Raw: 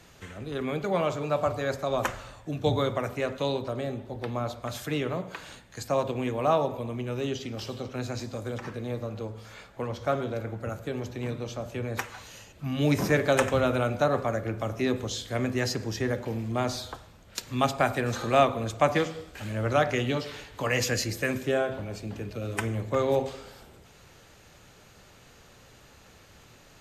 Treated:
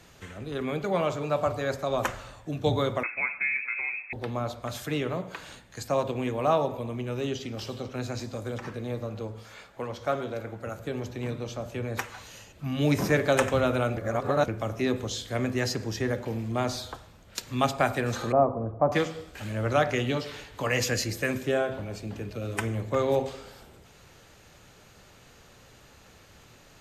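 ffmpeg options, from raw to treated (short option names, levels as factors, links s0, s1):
-filter_complex "[0:a]asettb=1/sr,asplit=3[s0][s1][s2];[s0]atrim=end=3.034[s3];[s1]atrim=start=3.03:end=4.13,asetpts=PTS-STARTPTS,afade=t=in:d=0.004:c=qsin,afade=t=out:st=1.096:d=0.004:c=qsin,lowpass=f=2300:t=q:w=0.5098,lowpass=f=2300:t=q:w=0.6013,lowpass=f=2300:t=q:w=0.9,lowpass=f=2300:t=q:w=2.563,afreqshift=-2700[s4];[s2]atrim=start=4.126[s5];[s3][s4]acrossfade=d=0.004:c1=hsin:c2=qsin[s6];[s6][s5]acrossfade=d=0.004:c1=qsin:c2=hsin,asettb=1/sr,asplit=3[s7][s8][s9];[s7]atrim=end=9.434[s10];[s8]atrim=start=9.43:end=10.78,asetpts=PTS-STARTPTS,afade=t=in:d=0.004:c=qsin,afade=t=out:st=1.346:d=0.004:c=qsin,lowshelf=f=230:g=-6.5[s11];[s9]atrim=start=10.776[s12];[s10][s11]acrossfade=d=0.004:c1=hsin:c2=qsin[s13];[s13][s12]acrossfade=d=0.004:c1=qsin:c2=hsin,asettb=1/sr,asplit=3[s14][s15][s16];[s14]atrim=end=18.324[s17];[s15]atrim=start=18.32:end=18.92,asetpts=PTS-STARTPTS,afade=t=in:d=0.004:c=qsin,afade=t=out:st=0.596:d=0.004:c=qsin,lowpass=f=1000:w=0.5412,lowpass=f=1000:w=1.3066[s18];[s16]atrim=start=18.916[s19];[s17][s18]acrossfade=d=0.004:c1=hsin:c2=qsin[s20];[s20][s19]acrossfade=d=0.004:c1=qsin:c2=hsin,asplit=3[s21][s22][s23];[s21]atrim=end=13.972[s24];[s22]atrim=start=13.968:end=14.482,asetpts=PTS-STARTPTS,areverse[s25];[s23]atrim=start=14.478[s26];[s24][s25]acrossfade=d=0.004:c1=hsin:c2=hsin[s27];[s27][s26]acrossfade=d=0.004:c1=hsin:c2=hsin"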